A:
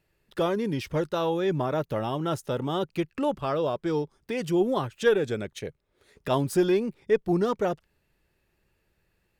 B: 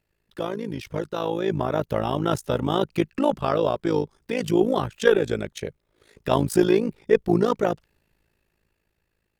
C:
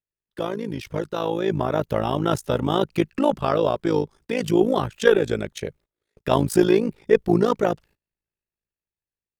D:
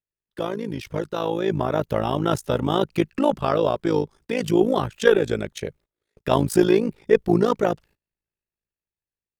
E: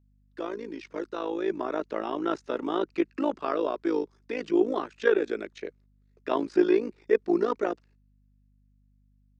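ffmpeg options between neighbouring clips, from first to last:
-af "dynaudnorm=f=290:g=11:m=2.82,tremolo=f=54:d=0.824"
-af "agate=range=0.0562:threshold=0.00316:ratio=16:detection=peak,volume=1.19"
-af anull
-filter_complex "[0:a]acrossover=split=4100[s0][s1];[s1]acompressor=threshold=0.00316:ratio=4:attack=1:release=60[s2];[s0][s2]amix=inputs=2:normalize=0,highpass=f=280:w=0.5412,highpass=f=280:w=1.3066,equalizer=f=320:t=q:w=4:g=3,equalizer=f=550:t=q:w=4:g=-5,equalizer=f=820:t=q:w=4:g=-5,equalizer=f=3200:t=q:w=4:g=-7,lowpass=f=6700:w=0.5412,lowpass=f=6700:w=1.3066,aeval=exprs='val(0)+0.00126*(sin(2*PI*50*n/s)+sin(2*PI*2*50*n/s)/2+sin(2*PI*3*50*n/s)/3+sin(2*PI*4*50*n/s)/4+sin(2*PI*5*50*n/s)/5)':c=same,volume=0.596"

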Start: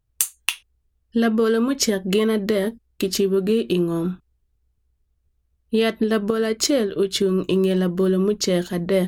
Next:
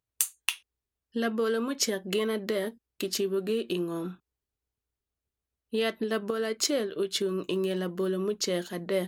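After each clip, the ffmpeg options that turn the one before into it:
-af "highpass=f=380:p=1,volume=0.501"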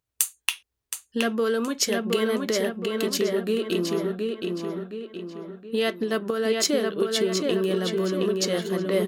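-filter_complex "[0:a]asplit=2[s0][s1];[s1]adelay=720,lowpass=f=4400:p=1,volume=0.708,asplit=2[s2][s3];[s3]adelay=720,lowpass=f=4400:p=1,volume=0.47,asplit=2[s4][s5];[s5]adelay=720,lowpass=f=4400:p=1,volume=0.47,asplit=2[s6][s7];[s7]adelay=720,lowpass=f=4400:p=1,volume=0.47,asplit=2[s8][s9];[s9]adelay=720,lowpass=f=4400:p=1,volume=0.47,asplit=2[s10][s11];[s11]adelay=720,lowpass=f=4400:p=1,volume=0.47[s12];[s0][s2][s4][s6][s8][s10][s12]amix=inputs=7:normalize=0,volume=1.5"

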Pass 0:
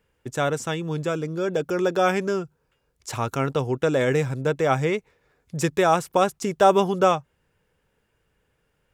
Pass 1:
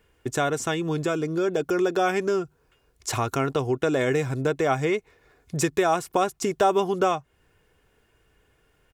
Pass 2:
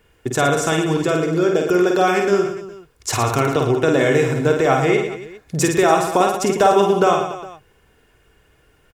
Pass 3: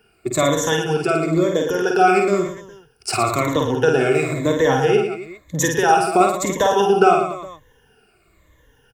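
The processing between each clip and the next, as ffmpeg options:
-af "aecho=1:1:2.8:0.37,acompressor=threshold=0.0282:ratio=2,volume=1.88"
-af "aecho=1:1:50|112.5|190.6|288.3|410.4:0.631|0.398|0.251|0.158|0.1,volume=1.88"
-filter_complex "[0:a]afftfilt=real='re*pow(10,16/40*sin(2*PI*(1.1*log(max(b,1)*sr/1024/100)/log(2)-(-1)*(pts-256)/sr)))':imag='im*pow(10,16/40*sin(2*PI*(1.1*log(max(b,1)*sr/1024/100)/log(2)-(-1)*(pts-256)/sr)))':win_size=1024:overlap=0.75,acrossover=split=150[s0][s1];[s0]aeval=exprs='0.0596*(abs(mod(val(0)/0.0596+3,4)-2)-1)':c=same[s2];[s2][s1]amix=inputs=2:normalize=0,volume=0.708"

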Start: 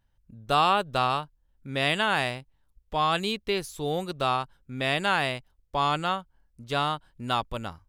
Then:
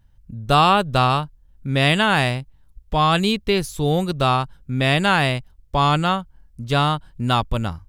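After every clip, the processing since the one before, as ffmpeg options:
-af "bass=f=250:g=9,treble=f=4000:g=1,volume=2.11"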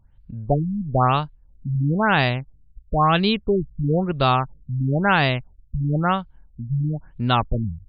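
-af "afftfilt=real='re*lt(b*sr/1024,230*pow(5000/230,0.5+0.5*sin(2*PI*1*pts/sr)))':imag='im*lt(b*sr/1024,230*pow(5000/230,0.5+0.5*sin(2*PI*1*pts/sr)))':win_size=1024:overlap=0.75"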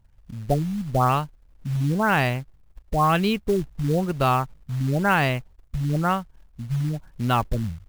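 -af "equalizer=f=3600:t=o:w=0.27:g=-12.5,acrusher=bits=5:mode=log:mix=0:aa=0.000001,volume=0.794"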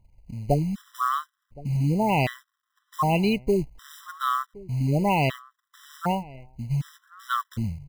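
-filter_complex "[0:a]asplit=2[s0][s1];[s1]adelay=1068,lowpass=f=1700:p=1,volume=0.0891,asplit=2[s2][s3];[s3]adelay=1068,lowpass=f=1700:p=1,volume=0.19[s4];[s0][s2][s4]amix=inputs=3:normalize=0,afftfilt=real='re*gt(sin(2*PI*0.66*pts/sr)*(1-2*mod(floor(b*sr/1024/1000),2)),0)':imag='im*gt(sin(2*PI*0.66*pts/sr)*(1-2*mod(floor(b*sr/1024/1000),2)),0)':win_size=1024:overlap=0.75"

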